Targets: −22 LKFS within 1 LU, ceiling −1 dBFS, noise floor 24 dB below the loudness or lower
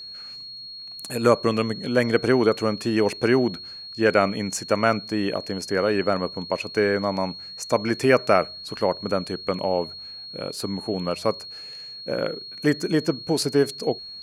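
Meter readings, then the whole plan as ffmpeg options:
interfering tone 4,300 Hz; level of the tone −36 dBFS; integrated loudness −23.5 LKFS; sample peak −3.0 dBFS; target loudness −22.0 LKFS
→ -af "bandreject=frequency=4300:width=30"
-af "volume=1.5dB"

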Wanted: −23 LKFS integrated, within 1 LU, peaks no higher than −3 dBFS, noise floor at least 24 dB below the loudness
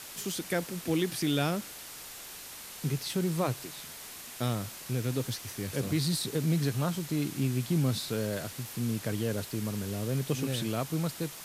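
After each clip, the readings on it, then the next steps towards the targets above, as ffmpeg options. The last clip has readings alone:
background noise floor −45 dBFS; target noise floor −57 dBFS; integrated loudness −32.5 LKFS; sample peak −15.0 dBFS; target loudness −23.0 LKFS
→ -af "afftdn=noise_reduction=12:noise_floor=-45"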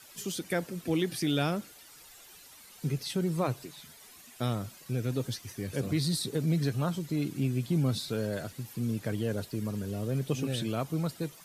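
background noise floor −53 dBFS; target noise floor −56 dBFS
→ -af "afftdn=noise_reduction=6:noise_floor=-53"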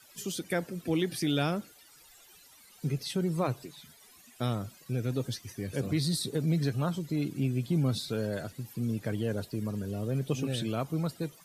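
background noise floor −57 dBFS; integrated loudness −32.5 LKFS; sample peak −15.0 dBFS; target loudness −23.0 LKFS
→ -af "volume=9.5dB"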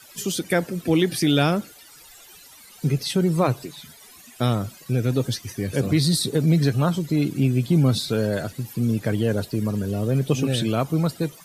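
integrated loudness −23.0 LKFS; sample peak −5.5 dBFS; background noise floor −48 dBFS

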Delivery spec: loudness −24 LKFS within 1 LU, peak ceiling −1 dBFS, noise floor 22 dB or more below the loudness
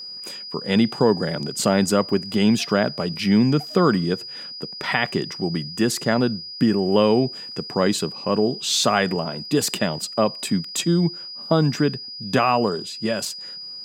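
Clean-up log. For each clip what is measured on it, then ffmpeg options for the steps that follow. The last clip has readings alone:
interfering tone 4,900 Hz; level of the tone −33 dBFS; integrated loudness −21.5 LKFS; sample peak −3.0 dBFS; target loudness −24.0 LKFS
→ -af "bandreject=frequency=4900:width=30"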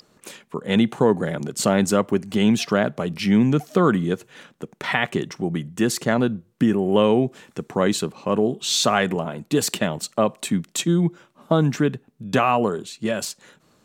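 interfering tone none found; integrated loudness −22.0 LKFS; sample peak −3.5 dBFS; target loudness −24.0 LKFS
→ -af "volume=-2dB"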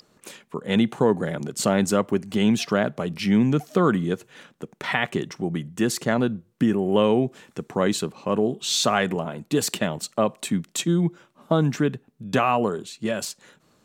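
integrated loudness −24.0 LKFS; sample peak −5.5 dBFS; background noise floor −64 dBFS

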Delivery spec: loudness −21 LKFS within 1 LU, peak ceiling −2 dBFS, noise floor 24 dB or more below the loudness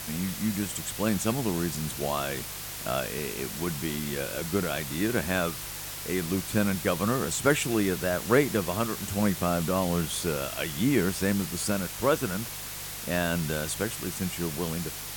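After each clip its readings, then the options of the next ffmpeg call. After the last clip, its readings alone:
mains hum 50 Hz; hum harmonics up to 150 Hz; level of the hum −46 dBFS; background noise floor −38 dBFS; target noise floor −53 dBFS; integrated loudness −28.5 LKFS; sample peak −8.5 dBFS; target loudness −21.0 LKFS
→ -af "bandreject=frequency=50:width_type=h:width=4,bandreject=frequency=100:width_type=h:width=4,bandreject=frequency=150:width_type=h:width=4"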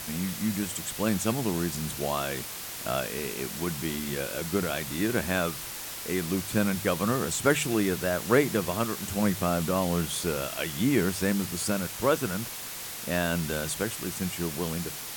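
mains hum none found; background noise floor −38 dBFS; target noise floor −53 dBFS
→ -af "afftdn=noise_reduction=15:noise_floor=-38"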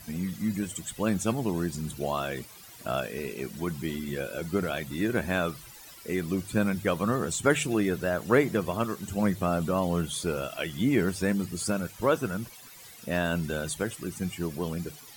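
background noise floor −49 dBFS; target noise floor −54 dBFS
→ -af "afftdn=noise_reduction=6:noise_floor=-49"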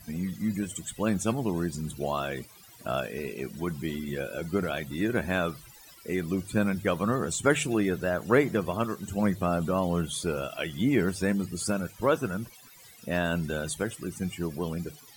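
background noise floor −52 dBFS; target noise floor −54 dBFS
→ -af "afftdn=noise_reduction=6:noise_floor=-52"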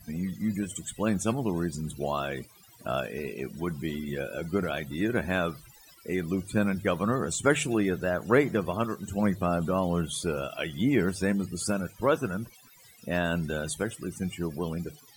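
background noise floor −55 dBFS; integrated loudness −29.5 LKFS; sample peak −9.0 dBFS; target loudness −21.0 LKFS
→ -af "volume=8.5dB,alimiter=limit=-2dB:level=0:latency=1"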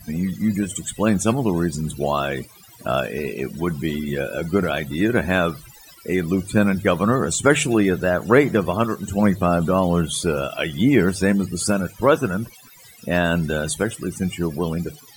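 integrated loudness −21.0 LKFS; sample peak −2.0 dBFS; background noise floor −47 dBFS

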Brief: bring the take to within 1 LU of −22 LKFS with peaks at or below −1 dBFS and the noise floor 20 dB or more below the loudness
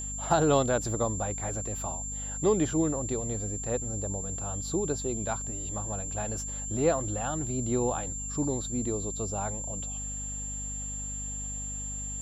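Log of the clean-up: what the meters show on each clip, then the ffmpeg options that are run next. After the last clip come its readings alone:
mains hum 50 Hz; hum harmonics up to 250 Hz; level of the hum −37 dBFS; interfering tone 7,300 Hz; level of the tone −35 dBFS; integrated loudness −30.5 LKFS; sample peak −10.5 dBFS; target loudness −22.0 LKFS
→ -af "bandreject=frequency=50:width_type=h:width=6,bandreject=frequency=100:width_type=h:width=6,bandreject=frequency=150:width_type=h:width=6,bandreject=frequency=200:width_type=h:width=6,bandreject=frequency=250:width_type=h:width=6"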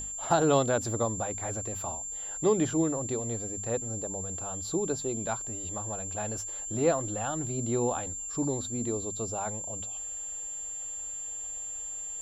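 mains hum none found; interfering tone 7,300 Hz; level of the tone −35 dBFS
→ -af "bandreject=frequency=7300:width=30"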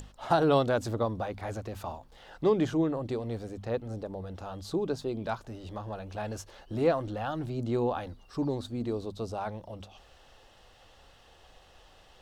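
interfering tone none found; integrated loudness −32.0 LKFS; sample peak −11.5 dBFS; target loudness −22.0 LKFS
→ -af "volume=10dB"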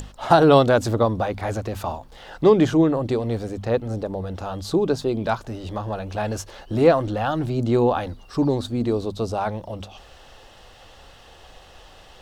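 integrated loudness −22.0 LKFS; sample peak −1.5 dBFS; background noise floor −48 dBFS

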